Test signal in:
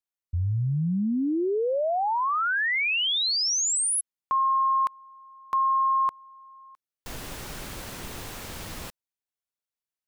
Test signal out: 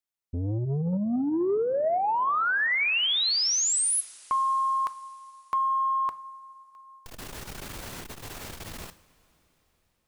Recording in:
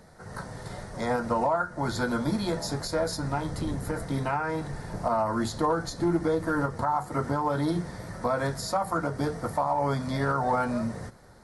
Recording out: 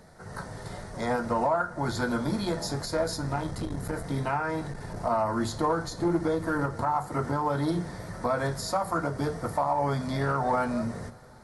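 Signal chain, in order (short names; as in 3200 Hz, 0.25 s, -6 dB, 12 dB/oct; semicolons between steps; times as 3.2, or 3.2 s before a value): two-slope reverb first 0.46 s, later 4.5 s, from -18 dB, DRR 14 dB; core saturation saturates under 260 Hz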